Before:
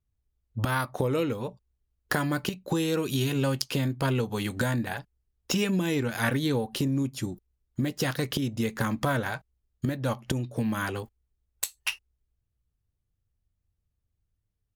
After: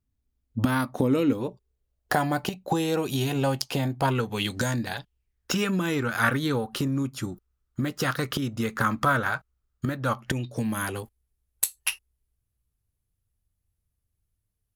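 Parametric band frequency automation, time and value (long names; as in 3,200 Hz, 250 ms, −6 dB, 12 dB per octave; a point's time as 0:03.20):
parametric band +12.5 dB 0.51 octaves
0:01.22 250 Hz
0:02.18 760 Hz
0:04.03 760 Hz
0:04.65 6,700 Hz
0:05.59 1,300 Hz
0:10.23 1,300 Hz
0:10.71 11,000 Hz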